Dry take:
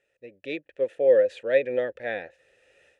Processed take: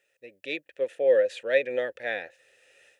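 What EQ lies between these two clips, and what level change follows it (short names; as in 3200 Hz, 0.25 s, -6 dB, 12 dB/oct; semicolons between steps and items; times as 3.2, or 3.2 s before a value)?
tilt +2.5 dB/oct; 0.0 dB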